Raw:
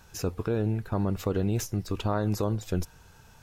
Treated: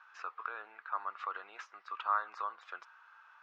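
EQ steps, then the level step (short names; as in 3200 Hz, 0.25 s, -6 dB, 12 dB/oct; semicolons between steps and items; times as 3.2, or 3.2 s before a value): ladder high-pass 1100 Hz, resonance 65%; LPF 2500 Hz 12 dB/oct; air absorption 100 m; +8.0 dB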